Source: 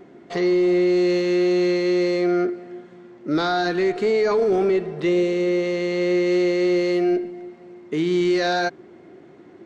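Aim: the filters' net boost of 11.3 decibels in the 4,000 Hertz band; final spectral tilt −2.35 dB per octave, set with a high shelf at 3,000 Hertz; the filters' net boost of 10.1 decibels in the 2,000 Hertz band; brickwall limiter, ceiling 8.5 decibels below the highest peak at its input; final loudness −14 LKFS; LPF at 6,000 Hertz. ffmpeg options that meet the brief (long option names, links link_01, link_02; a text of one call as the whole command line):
ffmpeg -i in.wav -af "lowpass=6000,equalizer=frequency=2000:width_type=o:gain=8.5,highshelf=frequency=3000:gain=4,equalizer=frequency=4000:width_type=o:gain=8.5,volume=7dB,alimiter=limit=-6.5dB:level=0:latency=1" out.wav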